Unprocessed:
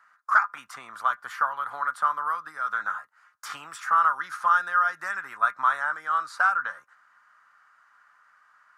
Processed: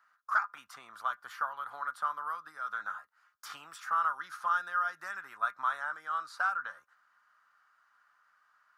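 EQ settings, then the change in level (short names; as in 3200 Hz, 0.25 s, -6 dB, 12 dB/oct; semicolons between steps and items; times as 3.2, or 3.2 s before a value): graphic EQ 125/250/500/1000/2000/8000 Hz -7/-5/-4/-5/-7/-7 dB; -2.0 dB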